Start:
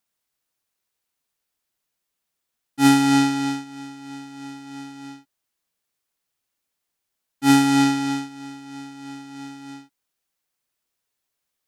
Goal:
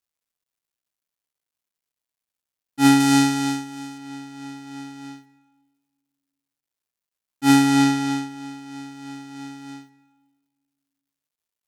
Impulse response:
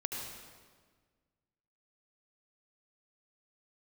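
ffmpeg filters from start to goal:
-filter_complex "[0:a]asettb=1/sr,asplit=3[s0][s1][s2];[s0]atrim=end=3.004[s3];[s1]atrim=start=3:end=3.98,asetpts=PTS-STARTPTS,afade=t=in:d=0.004:c=qsin,afade=t=out:st=0.976:d=0.004:c=qsin,highshelf=f=5500:g=7.5[s4];[s2]atrim=start=3.976[s5];[s3][s4]acrossfade=d=0.004:c1=hsin:c2=qsin[s6];[s6][s5]acrossfade=d=0.004:c1=qsin:c2=hsin,acrusher=bits=11:mix=0:aa=0.000001,asplit=2[s7][s8];[1:a]atrim=start_sample=2205,adelay=51[s9];[s8][s9]afir=irnorm=-1:irlink=0,volume=0.106[s10];[s7][s10]amix=inputs=2:normalize=0"

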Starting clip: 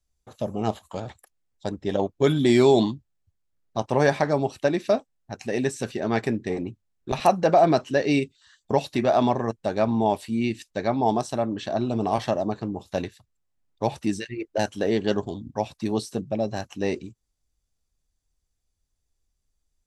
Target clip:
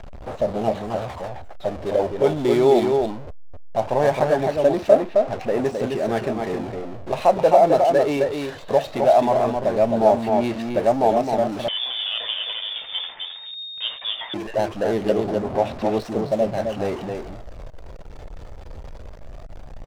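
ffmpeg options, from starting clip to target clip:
-filter_complex "[0:a]aeval=exprs='val(0)+0.5*0.0531*sgn(val(0))':c=same,aecho=1:1:263:0.631,adynamicsmooth=sensitivity=5:basefreq=930,acrusher=bits=10:mix=0:aa=0.000001,asettb=1/sr,asplit=3[s0][s1][s2];[s0]atrim=end=11.684[s3];[s1]atrim=start=11.68:end=14.34,asetpts=PTS-STARTPTS,afade=t=in:d=0.004:c=qsin,afade=t=out:st=2.656:d=0.004:c=qsin,lowpass=f=3100:t=q:w=0.5098,lowpass=f=3100:t=q:w=0.6013,lowpass=f=3100:t=q:w=0.9,lowpass=f=3100:t=q:w=2.563,afreqshift=-3700[s4];[s2]atrim=start=14.336[s5];[s3][s4]acrossfade=d=0.004:c1=hsin:c2=qsin[s6];[s6][s5]acrossfade=d=0.004:c1=qsin:c2=hsin,equalizer=f=620:t=o:w=1.1:g=11,aphaser=in_gain=1:out_gain=1:delay=2.3:decay=0.25:speed=0.19:type=sinusoidal,volume=0.473"

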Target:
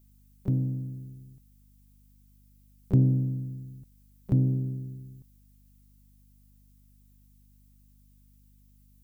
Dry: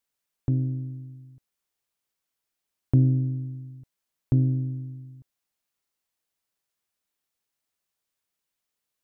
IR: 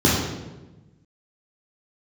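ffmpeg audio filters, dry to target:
-filter_complex "[0:a]asplit=2[s0][s1];[s1]asetrate=66075,aresample=44100,atempo=0.66742,volume=0.224[s2];[s0][s2]amix=inputs=2:normalize=0,aemphasis=mode=production:type=75kf,aeval=exprs='val(0)+0.00158*(sin(2*PI*50*n/s)+sin(2*PI*2*50*n/s)/2+sin(2*PI*3*50*n/s)/3+sin(2*PI*4*50*n/s)/4+sin(2*PI*5*50*n/s)/5)':c=same,volume=0.794"

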